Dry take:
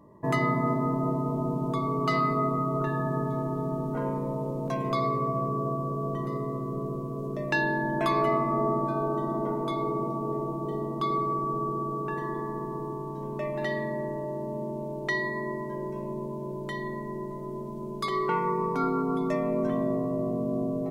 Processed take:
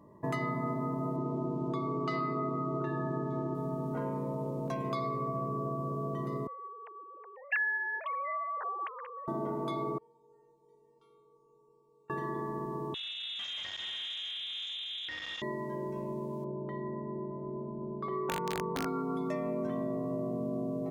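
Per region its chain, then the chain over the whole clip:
1.16–3.55 LPF 6100 Hz + bell 340 Hz +8.5 dB 0.31 oct
6.47–9.28 sine-wave speech + BPF 480–2100 Hz + tilt shelf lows -8.5 dB, about 1500 Hz
9.98–12.1 upward compressor, threshold -41 dBFS + Chebyshev low-pass 8300 Hz + resonator 460 Hz, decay 0.69 s, mix 100%
12.94–15.42 overloaded stage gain 34 dB + inverted band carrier 3800 Hz + core saturation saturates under 1400 Hz
16.44–18.86 LPF 1000 Hz + wrapped overs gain 20 dB
whole clip: HPF 41 Hz; compressor 3:1, threshold -29 dBFS; gain -2.5 dB

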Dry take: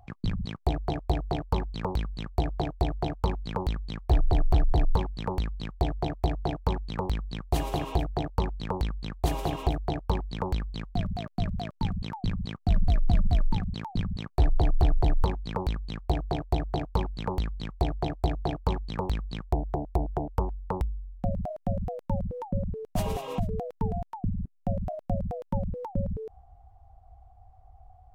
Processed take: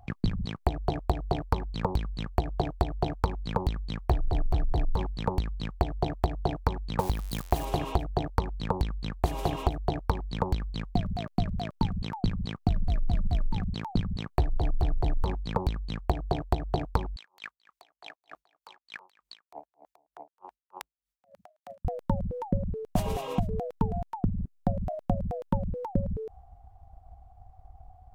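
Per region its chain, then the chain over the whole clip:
6.99–7.65 switching spikes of -28 dBFS + bell 790 Hz +4 dB 1.2 oct
17.16–21.85 HPF 1300 Hz + negative-ratio compressor -48 dBFS + dB-linear tremolo 3.3 Hz, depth 26 dB
whole clip: transient shaper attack +7 dB, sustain +2 dB; compressor 4:1, threshold -22 dBFS

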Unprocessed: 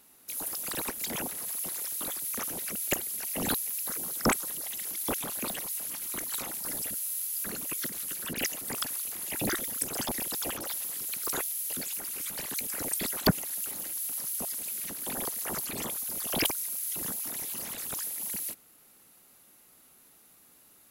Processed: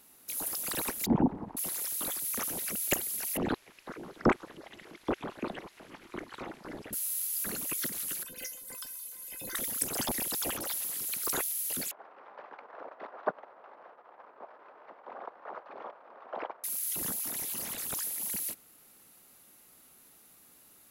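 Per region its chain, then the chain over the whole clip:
1.06–1.57 synth low-pass 860 Hz, resonance Q 4 + resonant low shelf 410 Hz +13 dB, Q 1.5
3.37–6.93 LPF 2000 Hz + bell 360 Hz +6.5 dB 0.52 oct
8.23–9.55 bell 12000 Hz +5 dB 1.6 oct + resonator 510 Hz, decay 0.16 s, mix 90%
11.91–16.64 CVSD 32 kbps + Butterworth band-pass 820 Hz, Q 1
whole clip: dry

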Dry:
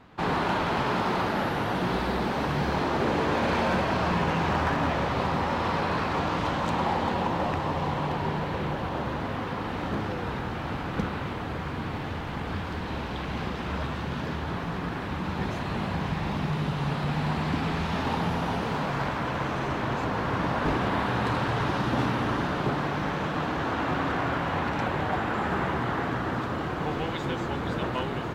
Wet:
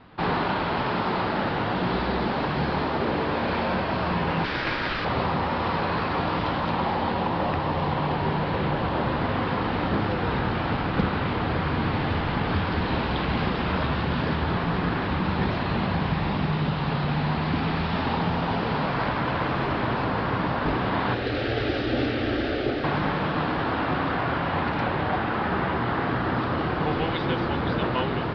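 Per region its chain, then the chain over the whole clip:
4.44–5.05 RIAA curve recording + ring modulator 660 Hz
21.14–22.84 careless resampling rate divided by 4×, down none, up hold + fixed phaser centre 410 Hz, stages 4
whole clip: steep low-pass 5100 Hz 72 dB/oct; de-hum 70.08 Hz, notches 38; vocal rider; gain +3.5 dB

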